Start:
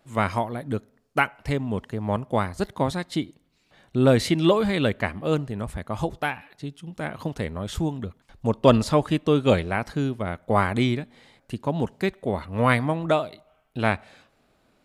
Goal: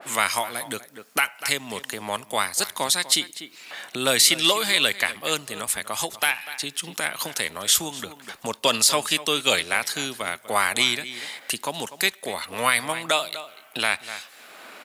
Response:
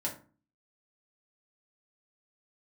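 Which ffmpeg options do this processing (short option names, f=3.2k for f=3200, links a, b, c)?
-filter_complex "[0:a]asplit=2[a][b];[b]acompressor=threshold=-35dB:ratio=6,volume=0.5dB[c];[a][c]amix=inputs=2:normalize=0,aderivative,asplit=2[d][e];[e]adelay=244.9,volume=-16dB,highshelf=f=4k:g=-5.51[f];[d][f]amix=inputs=2:normalize=0,acrossover=split=160|2500[g][h][i];[h]acompressor=mode=upward:threshold=-44dB:ratio=2.5[j];[g][j][i]amix=inputs=3:normalize=0,alimiter=level_in=22.5dB:limit=-1dB:release=50:level=0:latency=1,adynamicequalizer=threshold=0.0316:dfrequency=1700:dqfactor=0.7:tfrequency=1700:tqfactor=0.7:attack=5:release=100:ratio=0.375:range=1.5:mode=boostabove:tftype=highshelf,volume=-6.5dB"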